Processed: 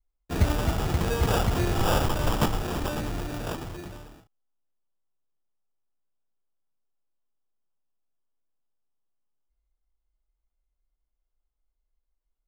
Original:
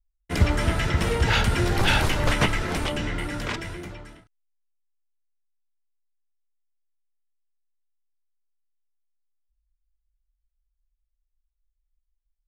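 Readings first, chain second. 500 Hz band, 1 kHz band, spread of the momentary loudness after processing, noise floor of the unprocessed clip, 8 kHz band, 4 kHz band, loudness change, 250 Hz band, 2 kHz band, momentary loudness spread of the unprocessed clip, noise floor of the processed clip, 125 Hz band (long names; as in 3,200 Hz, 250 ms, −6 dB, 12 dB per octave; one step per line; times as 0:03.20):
−0.5 dB, −1.5 dB, 12 LU, −79 dBFS, −2.0 dB, −7.0 dB, −3.0 dB, −1.5 dB, −9.0 dB, 11 LU, −81 dBFS, −2.5 dB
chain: sample-rate reduction 2,100 Hz, jitter 0%
level −2.5 dB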